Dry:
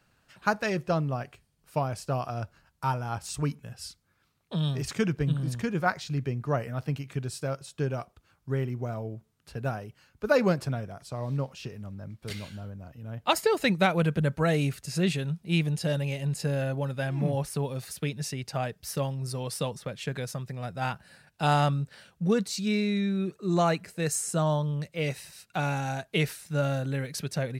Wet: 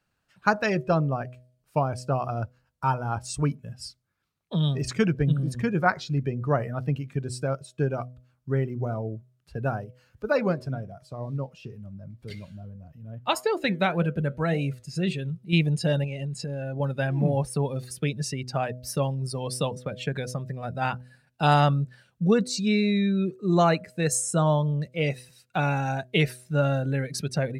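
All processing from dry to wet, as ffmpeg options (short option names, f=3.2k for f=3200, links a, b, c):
-filter_complex "[0:a]asettb=1/sr,asplit=3[a][b][c];[a]atrim=end=9.844[d];[b]atrim=start=9.84:end=15.53,asetpts=PTS-STARTPTS,afade=t=in:d=0.004:c=qsin,afade=t=out:st=5.686:d=0.004:c=qsin,acompressor=mode=upward:threshold=-38dB:ratio=2.5:attack=3.2:release=140:knee=2.83:detection=peak,flanger=delay=5.1:depth=4:regen=84:speed=1.9:shape=triangular[e];[c]atrim=start=15.526[f];[d][e]acrossfade=d=0.004:c1=hsin:c2=qsin[g];[g][f]acrossfade=d=0.004:c1=qsin:c2=hsin,asettb=1/sr,asplit=3[h][i][j];[h]atrim=end=16.044[k];[i]atrim=start=16.04:end=16.8,asetpts=PTS-STARTPTS,afade=t=in:d=0.004:c=qsin,afade=t=out:st=0.756:d=0.004:c=qsin,lowpass=10k,acompressor=threshold=-32dB:ratio=12:attack=3.2:release=140:knee=1:detection=peak[l];[j]atrim=start=16.796[m];[k][l]acrossfade=d=0.004:c1=hsin:c2=qsin[n];[n][m]acrossfade=d=0.004:c1=qsin:c2=hsin,afftdn=nr=13:nf=-42,bandreject=f=125.3:t=h:w=4,bandreject=f=250.6:t=h:w=4,bandreject=f=375.9:t=h:w=4,bandreject=f=501.2:t=h:w=4,bandreject=f=626.5:t=h:w=4,volume=4dB"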